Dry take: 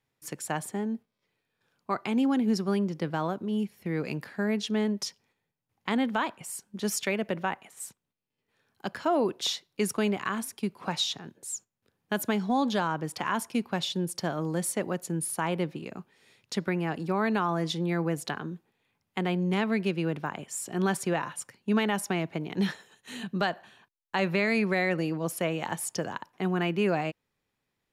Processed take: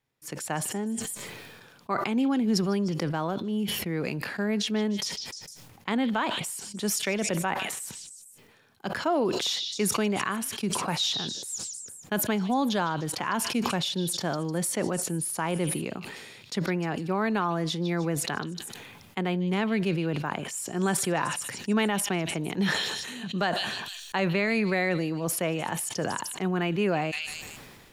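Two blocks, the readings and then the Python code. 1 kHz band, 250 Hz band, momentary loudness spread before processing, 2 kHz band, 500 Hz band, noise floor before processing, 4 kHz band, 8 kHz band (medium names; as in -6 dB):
+1.5 dB, +1.0 dB, 11 LU, +2.0 dB, +1.0 dB, -82 dBFS, +4.5 dB, +5.5 dB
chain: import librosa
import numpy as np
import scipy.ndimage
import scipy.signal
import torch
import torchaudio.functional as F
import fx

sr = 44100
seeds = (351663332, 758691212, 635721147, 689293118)

p1 = x + fx.echo_stepped(x, sr, ms=152, hz=3900.0, octaves=0.7, feedback_pct=70, wet_db=-9, dry=0)
y = fx.sustainer(p1, sr, db_per_s=31.0)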